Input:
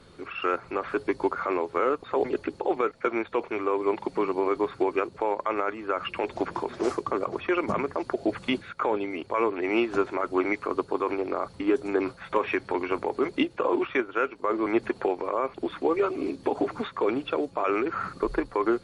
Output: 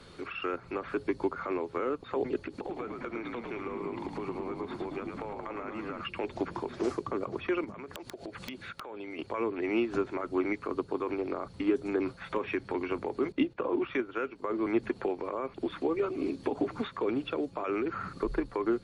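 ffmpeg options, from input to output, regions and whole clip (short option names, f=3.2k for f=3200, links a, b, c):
-filter_complex "[0:a]asettb=1/sr,asplit=3[a][b][c];[a]atrim=end=2.474[d];[b]atrim=start=2.47:end=6.01,asetpts=PTS-STARTPTS,afade=t=in:d=0.004:c=qsin,afade=t=out:st=3.536:d=0.004:c=qsin,acompressor=threshold=-32dB:ratio=4:attack=3.2:release=140:knee=1:detection=peak,asplit=9[e][f][g][h][i][j][k][l][m];[f]adelay=109,afreqshift=-56,volume=-5dB[n];[g]adelay=218,afreqshift=-112,volume=-9.7dB[o];[h]adelay=327,afreqshift=-168,volume=-14.5dB[p];[i]adelay=436,afreqshift=-224,volume=-19.2dB[q];[j]adelay=545,afreqshift=-280,volume=-23.9dB[r];[k]adelay=654,afreqshift=-336,volume=-28.7dB[s];[l]adelay=763,afreqshift=-392,volume=-33.4dB[t];[m]adelay=872,afreqshift=-448,volume=-38.1dB[u];[e][n][o][p][q][r][s][t][u]amix=inputs=9:normalize=0,atrim=end_sample=156114[v];[c]atrim=start=6.006[w];[d][v]acrossfade=d=0.004:c1=hsin:c2=qsin[x];[x][w]acrossfade=d=0.004:c1=qsin:c2=hsin,asettb=1/sr,asplit=3[y][z][aa];[y]atrim=end=7.644[ab];[z]atrim=start=7.64:end=9.19,asetpts=PTS-STARTPTS,afade=t=in:d=0.004:c=qsin,afade=t=out:st=1.546:d=0.004:c=qsin,acompressor=threshold=-36dB:ratio=16:attack=3.2:release=140:knee=1:detection=peak,aeval=exprs='(mod(22.4*val(0)+1,2)-1)/22.4':c=same[ac];[aa]atrim=start=9.186[ad];[ab][ac]acrossfade=d=0.004:c1=hsin:c2=qsin[ae];[ae][ad]acrossfade=d=0.004:c1=qsin:c2=hsin,asettb=1/sr,asplit=3[af][ag][ah];[af]atrim=end=13.324[ai];[ag]atrim=start=13.32:end=13.87,asetpts=PTS-STARTPTS,afade=t=in:d=0.004:c=qsin,afade=t=out:st=0.546:d=0.004:c=qsin,agate=range=-10dB:threshold=-47dB:ratio=16:release=100:detection=peak,lowpass=f=2.9k:p=1[aj];[ah]atrim=start=13.866[ak];[ai][aj]acrossfade=d=0.004:c1=hsin:c2=qsin[al];[al][ak]acrossfade=d=0.004:c1=qsin:c2=hsin,equalizer=f=3.4k:t=o:w=2.6:g=3.5,acrossover=split=340[am][an];[an]acompressor=threshold=-42dB:ratio=2[ao];[am][ao]amix=inputs=2:normalize=0"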